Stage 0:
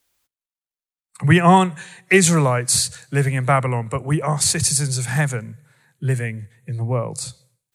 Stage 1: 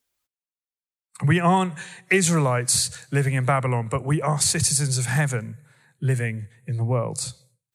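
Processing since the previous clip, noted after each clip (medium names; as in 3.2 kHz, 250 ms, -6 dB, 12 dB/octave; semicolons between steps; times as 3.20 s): spectral noise reduction 9 dB; compression 2.5:1, threshold -18 dBFS, peak gain reduction 7 dB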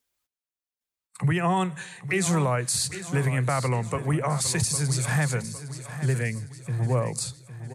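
peak limiter -14.5 dBFS, peak gain reduction 7.5 dB; feedback delay 808 ms, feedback 45%, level -12.5 dB; trim -1.5 dB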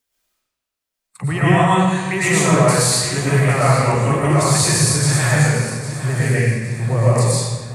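algorithmic reverb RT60 1.4 s, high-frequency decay 0.85×, pre-delay 75 ms, DRR -9 dB; trim +1.5 dB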